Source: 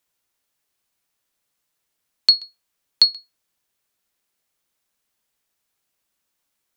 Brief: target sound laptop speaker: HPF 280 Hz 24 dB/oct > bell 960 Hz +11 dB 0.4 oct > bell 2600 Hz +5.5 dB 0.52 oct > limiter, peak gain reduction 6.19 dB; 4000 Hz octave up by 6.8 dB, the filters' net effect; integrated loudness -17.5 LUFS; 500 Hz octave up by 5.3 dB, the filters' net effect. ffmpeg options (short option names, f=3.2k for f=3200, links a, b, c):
-af "highpass=f=280:w=0.5412,highpass=f=280:w=1.3066,equalizer=f=500:t=o:g=5.5,equalizer=f=960:t=o:w=0.4:g=11,equalizer=f=2.6k:t=o:w=0.52:g=5.5,equalizer=f=4k:t=o:g=6.5,volume=-3dB,alimiter=limit=-5dB:level=0:latency=1"